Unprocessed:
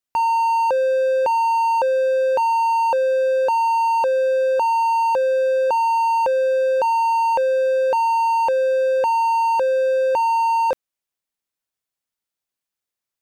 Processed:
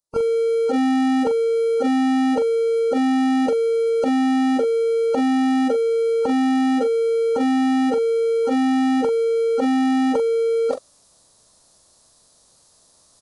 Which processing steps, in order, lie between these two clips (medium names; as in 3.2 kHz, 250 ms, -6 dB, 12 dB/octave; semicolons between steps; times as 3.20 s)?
high-order bell 2.2 kHz -14 dB 1.3 oct; reverse; upward compressor, threshold -29 dBFS; reverse; formant-preserving pitch shift -12 st; doubling 43 ms -9.5 dB